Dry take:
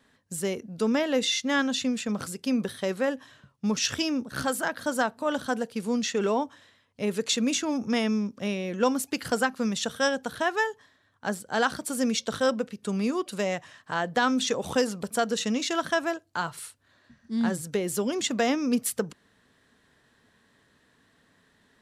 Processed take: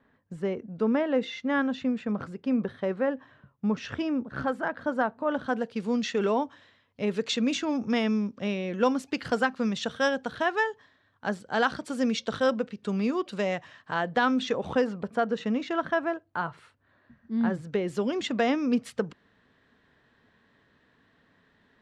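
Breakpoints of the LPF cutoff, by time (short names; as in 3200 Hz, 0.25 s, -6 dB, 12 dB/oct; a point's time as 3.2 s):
5.28 s 1700 Hz
5.73 s 4000 Hz
13.91 s 4000 Hz
15.15 s 1900 Hz
17.38 s 1900 Hz
17.97 s 3300 Hz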